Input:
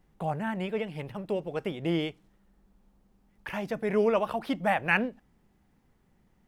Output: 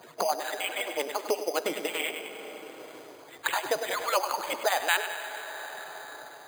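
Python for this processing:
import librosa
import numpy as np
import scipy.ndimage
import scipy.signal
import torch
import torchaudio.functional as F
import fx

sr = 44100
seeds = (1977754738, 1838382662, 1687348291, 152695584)

p1 = fx.hpss_only(x, sr, part='percussive')
p2 = scipy.signal.sosfilt(scipy.signal.butter(2, 430.0, 'highpass', fs=sr, output='sos'), p1)
p3 = fx.rider(p2, sr, range_db=4, speed_s=0.5)
p4 = p2 + (p3 * 10.0 ** (2.5 / 20.0))
p5 = fx.air_absorb(p4, sr, metres=160.0)
p6 = p5 + fx.echo_feedback(p5, sr, ms=100, feedback_pct=41, wet_db=-11.5, dry=0)
p7 = fx.rev_plate(p6, sr, seeds[0], rt60_s=2.6, hf_ratio=0.6, predelay_ms=0, drr_db=11.5)
p8 = np.repeat(p7[::8], 8)[:len(p7)]
y = fx.band_squash(p8, sr, depth_pct=70)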